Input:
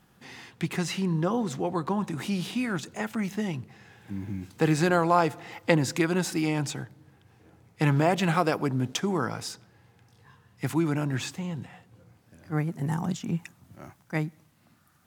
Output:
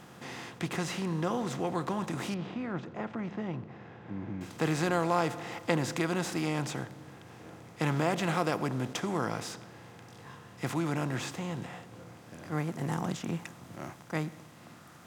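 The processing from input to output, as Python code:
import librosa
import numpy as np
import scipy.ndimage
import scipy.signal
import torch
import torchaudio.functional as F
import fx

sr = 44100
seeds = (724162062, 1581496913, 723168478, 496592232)

y = fx.bin_compress(x, sr, power=0.6)
y = fx.spacing_loss(y, sr, db_at_10k=34, at=(2.34, 4.41))
y = y * 10.0 ** (-8.5 / 20.0)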